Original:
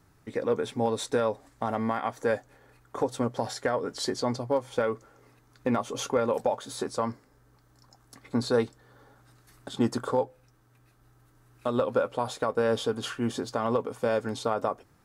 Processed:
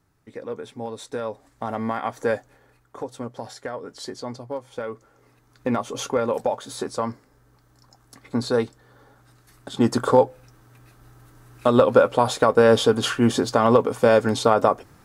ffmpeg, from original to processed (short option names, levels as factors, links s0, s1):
-af "volume=8.91,afade=t=in:st=1.03:d=1.2:silence=0.334965,afade=t=out:st=2.23:d=0.73:silence=0.375837,afade=t=in:st=4.8:d=0.91:silence=0.421697,afade=t=in:st=9.69:d=0.45:silence=0.421697"